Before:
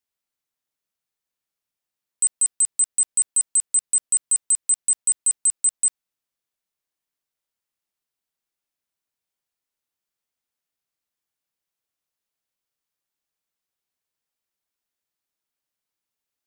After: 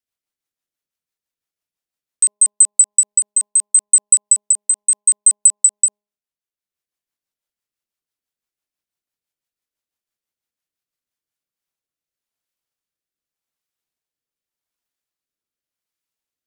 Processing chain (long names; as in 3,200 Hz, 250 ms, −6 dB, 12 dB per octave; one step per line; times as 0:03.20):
transient designer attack +11 dB, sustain −6 dB
rotating-speaker cabinet horn 6 Hz, later 0.85 Hz, at 0:10.98
hum removal 206.8 Hz, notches 5
level +1 dB